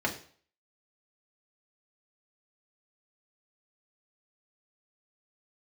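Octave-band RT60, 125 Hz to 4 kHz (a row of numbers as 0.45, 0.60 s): 0.45, 0.45, 0.45, 0.45, 0.45, 0.45 s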